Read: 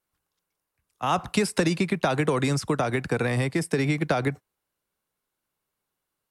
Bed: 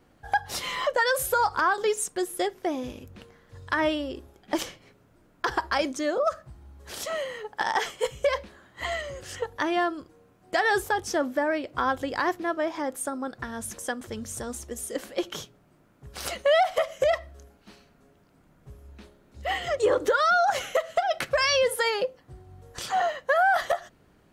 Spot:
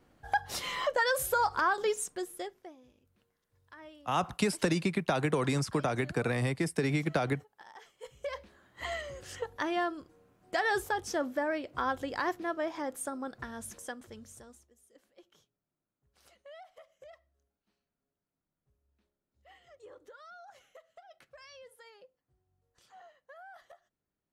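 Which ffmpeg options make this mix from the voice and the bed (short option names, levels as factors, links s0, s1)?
-filter_complex "[0:a]adelay=3050,volume=0.531[s0];[1:a]volume=5.96,afade=t=out:st=1.83:d=0.92:silence=0.0841395,afade=t=in:st=7.93:d=0.98:silence=0.1,afade=t=out:st=13.37:d=1.34:silence=0.0630957[s1];[s0][s1]amix=inputs=2:normalize=0"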